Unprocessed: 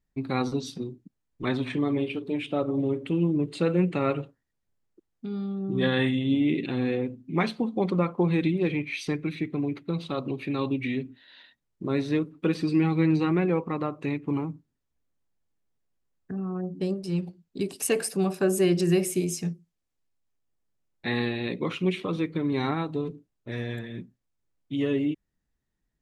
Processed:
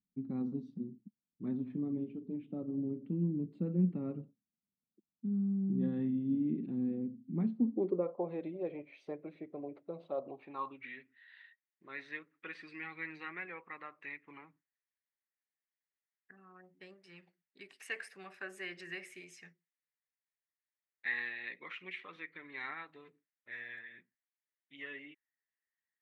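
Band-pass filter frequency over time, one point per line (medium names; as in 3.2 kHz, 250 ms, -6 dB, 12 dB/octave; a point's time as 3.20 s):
band-pass filter, Q 4.5
7.54 s 210 Hz
8.18 s 600 Hz
10.22 s 600 Hz
11.04 s 1.9 kHz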